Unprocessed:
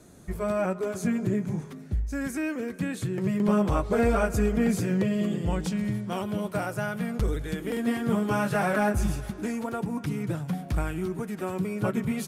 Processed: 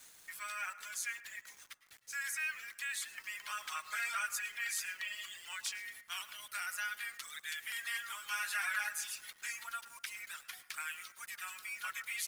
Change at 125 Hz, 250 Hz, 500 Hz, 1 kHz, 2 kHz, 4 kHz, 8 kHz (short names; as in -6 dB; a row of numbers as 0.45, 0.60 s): under -40 dB, under -40 dB, -38.0 dB, -12.0 dB, -1.5 dB, +1.5 dB, +1.5 dB